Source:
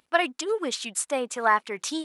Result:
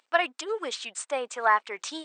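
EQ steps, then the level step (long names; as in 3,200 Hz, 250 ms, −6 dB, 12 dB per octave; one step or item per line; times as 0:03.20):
high-pass filter 500 Hz 12 dB per octave
dynamic equaliser 7,000 Hz, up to −6 dB, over −42 dBFS, Q 0.71
linear-phase brick-wall low-pass 8,900 Hz
0.0 dB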